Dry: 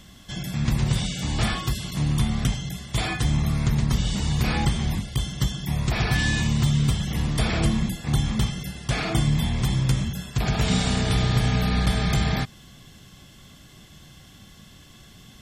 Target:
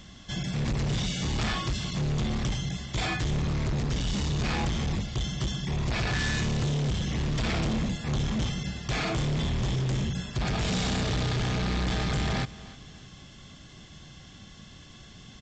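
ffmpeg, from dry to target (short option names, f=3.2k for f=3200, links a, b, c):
-af "aresample=16000,asoftclip=type=hard:threshold=-25.5dB,aresample=44100,aecho=1:1:304|608|912:0.112|0.0415|0.0154"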